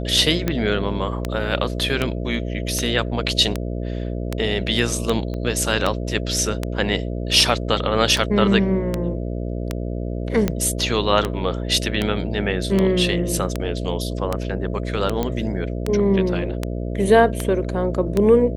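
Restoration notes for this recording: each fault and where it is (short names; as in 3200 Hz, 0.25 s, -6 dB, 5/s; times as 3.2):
buzz 60 Hz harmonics 11 -26 dBFS
tick 78 rpm -7 dBFS
5.34 pop -19 dBFS
15.23 pop -9 dBFS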